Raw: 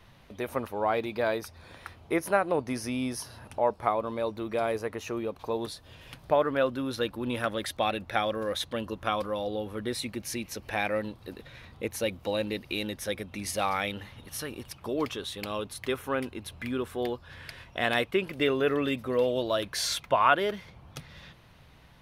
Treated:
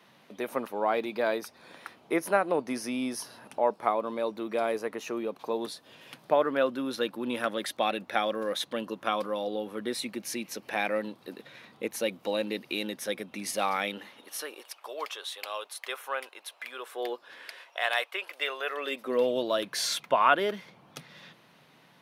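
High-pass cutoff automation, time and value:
high-pass 24 dB/octave
13.86 s 180 Hz
14.81 s 580 Hz
16.77 s 580 Hz
17.33 s 280 Hz
17.79 s 620 Hz
18.72 s 620 Hz
19.23 s 170 Hz

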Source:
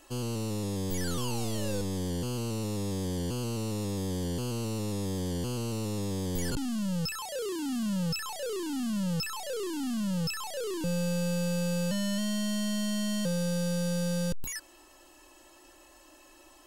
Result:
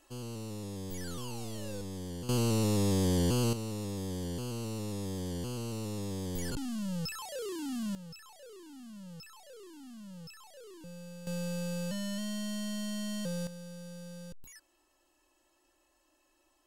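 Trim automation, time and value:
-8 dB
from 2.29 s +4.5 dB
from 3.53 s -4.5 dB
from 7.95 s -17 dB
from 11.27 s -6 dB
from 13.47 s -16 dB

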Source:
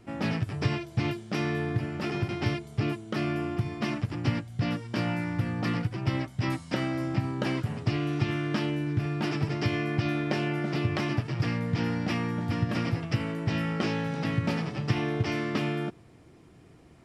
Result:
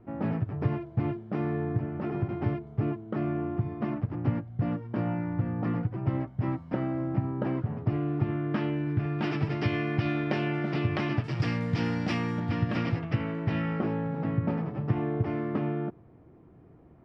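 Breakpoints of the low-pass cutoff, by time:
1.1 kHz
from 8.54 s 2 kHz
from 9.19 s 3.3 kHz
from 11.24 s 6.7 kHz
from 12.40 s 3.6 kHz
from 12.99 s 2.3 kHz
from 13.80 s 1.1 kHz

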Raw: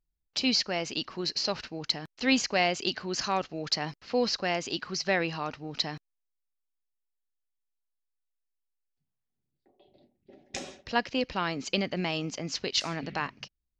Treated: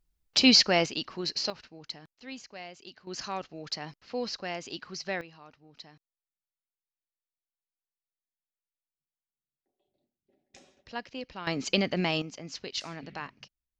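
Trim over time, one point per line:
+7 dB
from 0.86 s -1 dB
from 1.50 s -11 dB
from 2.13 s -18 dB
from 3.07 s -6.5 dB
from 5.21 s -18 dB
from 10.77 s -10 dB
from 11.47 s +2.5 dB
from 12.22 s -7 dB

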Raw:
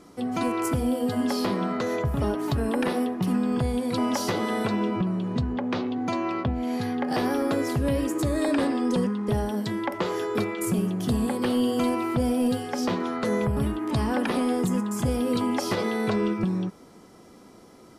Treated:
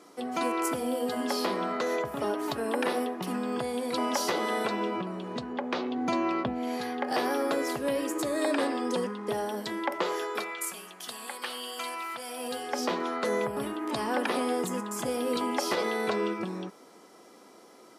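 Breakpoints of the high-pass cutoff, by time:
5.77 s 370 Hz
6.20 s 160 Hz
6.82 s 390 Hz
10.03 s 390 Hz
10.74 s 1.2 kHz
12.26 s 1.2 kHz
12.73 s 370 Hz

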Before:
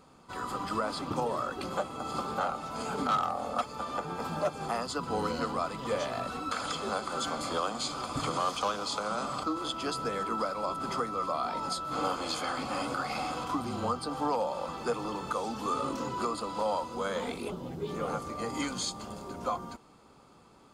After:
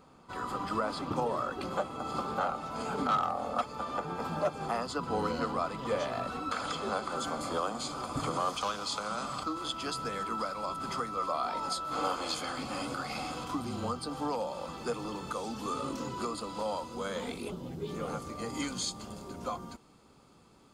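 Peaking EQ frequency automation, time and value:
peaking EQ -5 dB 2.3 oct
11 kHz
from 7.16 s 3.7 kHz
from 8.57 s 470 Hz
from 11.17 s 140 Hz
from 12.34 s 910 Hz

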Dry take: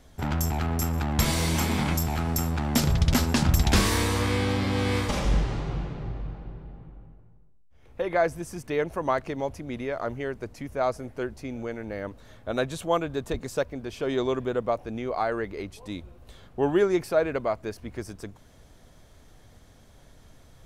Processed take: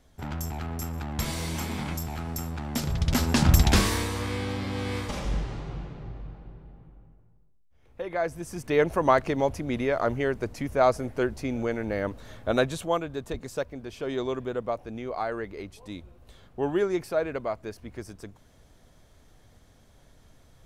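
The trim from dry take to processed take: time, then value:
2.84 s -6.5 dB
3.55 s +3.5 dB
4.11 s -5.5 dB
8.17 s -5.5 dB
8.82 s +5 dB
12.50 s +5 dB
13.04 s -3.5 dB

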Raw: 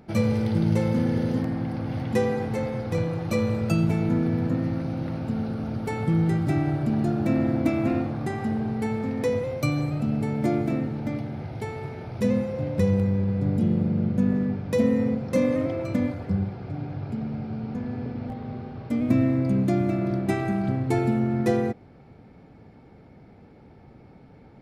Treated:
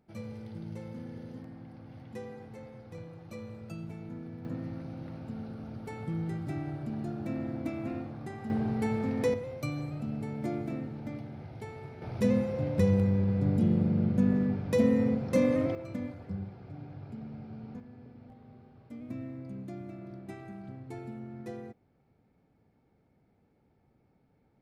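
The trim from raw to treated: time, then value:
-19 dB
from 4.45 s -12 dB
from 8.50 s -3 dB
from 9.34 s -10 dB
from 12.02 s -3 dB
from 15.75 s -12 dB
from 17.80 s -19 dB

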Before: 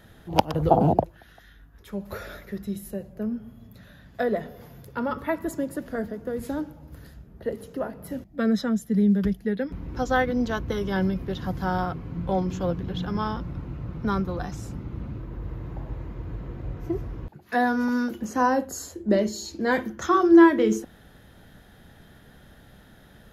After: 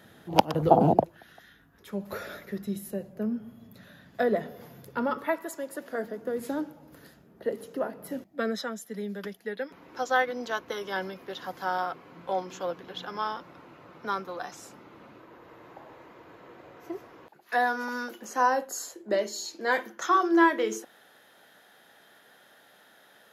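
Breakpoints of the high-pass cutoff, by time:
4.97 s 160 Hz
5.52 s 670 Hz
6.26 s 250 Hz
8.19 s 250 Hz
8.65 s 550 Hz

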